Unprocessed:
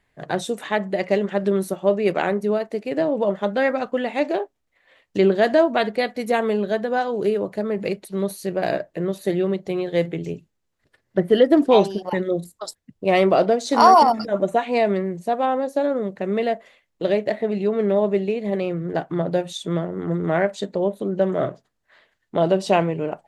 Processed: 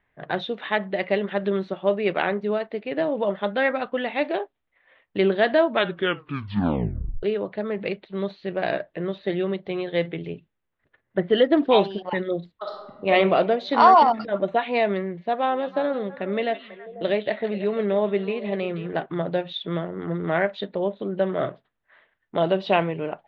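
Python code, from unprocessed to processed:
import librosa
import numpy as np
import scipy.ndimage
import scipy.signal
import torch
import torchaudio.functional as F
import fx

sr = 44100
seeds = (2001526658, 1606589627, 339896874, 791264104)

y = fx.reverb_throw(x, sr, start_s=12.55, length_s=0.56, rt60_s=1.2, drr_db=-1.5)
y = fx.echo_stepped(y, sr, ms=164, hz=3500.0, octaves=-1.4, feedback_pct=70, wet_db=-7.5, at=(15.01, 19.06))
y = fx.edit(y, sr, fx.tape_stop(start_s=5.66, length_s=1.57), tone=tone)
y = scipy.signal.sosfilt(scipy.signal.cheby1(4, 1.0, 3700.0, 'lowpass', fs=sr, output='sos'), y)
y = fx.env_lowpass(y, sr, base_hz=2000.0, full_db=-17.0)
y = fx.tilt_shelf(y, sr, db=-3.5, hz=1200.0)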